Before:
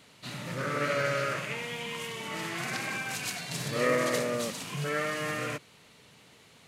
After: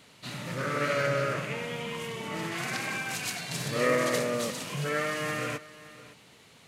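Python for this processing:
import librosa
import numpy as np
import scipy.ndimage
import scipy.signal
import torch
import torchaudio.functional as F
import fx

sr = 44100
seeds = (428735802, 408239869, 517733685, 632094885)

y = fx.tilt_shelf(x, sr, db=3.5, hz=970.0, at=(1.06, 2.52))
y = y + 10.0 ** (-18.0 / 20.0) * np.pad(y, (int(563 * sr / 1000.0), 0))[:len(y)]
y = y * librosa.db_to_amplitude(1.0)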